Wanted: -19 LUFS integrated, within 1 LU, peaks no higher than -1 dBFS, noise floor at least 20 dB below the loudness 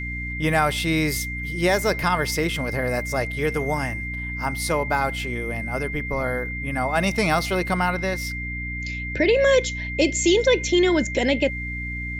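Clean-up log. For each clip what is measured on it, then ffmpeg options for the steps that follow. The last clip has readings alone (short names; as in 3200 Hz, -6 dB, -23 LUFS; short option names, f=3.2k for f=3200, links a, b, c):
hum 60 Hz; harmonics up to 300 Hz; hum level -30 dBFS; steady tone 2100 Hz; tone level -30 dBFS; loudness -23.0 LUFS; peak -8.0 dBFS; loudness target -19.0 LUFS
-> -af "bandreject=f=60:t=h:w=4,bandreject=f=120:t=h:w=4,bandreject=f=180:t=h:w=4,bandreject=f=240:t=h:w=4,bandreject=f=300:t=h:w=4"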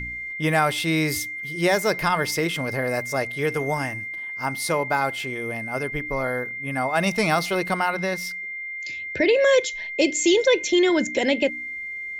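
hum none; steady tone 2100 Hz; tone level -30 dBFS
-> -af "bandreject=f=2.1k:w=30"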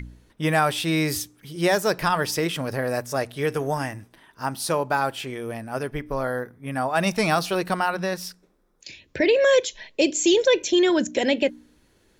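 steady tone none; loudness -23.5 LUFS; peak -9.0 dBFS; loudness target -19.0 LUFS
-> -af "volume=4.5dB"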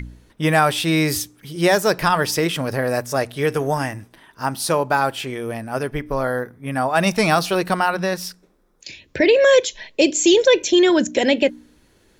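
loudness -19.0 LUFS; peak -4.5 dBFS; noise floor -58 dBFS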